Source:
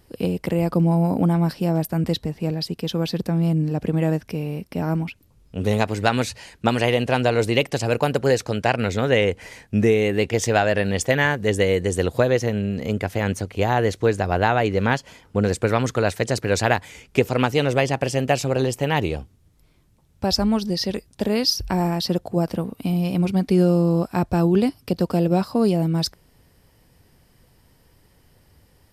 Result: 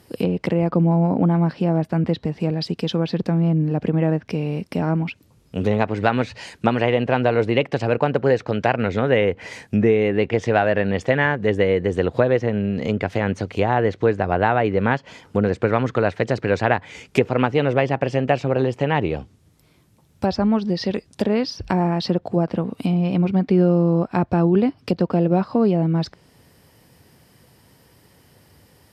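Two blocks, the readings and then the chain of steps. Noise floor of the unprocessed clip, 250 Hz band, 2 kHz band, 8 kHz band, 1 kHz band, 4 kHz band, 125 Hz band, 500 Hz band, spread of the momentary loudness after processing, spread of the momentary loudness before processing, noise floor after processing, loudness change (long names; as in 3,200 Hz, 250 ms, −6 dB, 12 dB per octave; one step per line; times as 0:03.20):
−58 dBFS, +1.5 dB, 0.0 dB, below −10 dB, +1.5 dB, −5.5 dB, +1.0 dB, +1.5 dB, 6 LU, 7 LU, −56 dBFS, +1.0 dB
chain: high-pass filter 100 Hz
treble cut that deepens with the level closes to 2,300 Hz, closed at −18.5 dBFS
in parallel at +1 dB: downward compressor, threshold −27 dBFS, peak gain reduction 14 dB
on the sum: level −1 dB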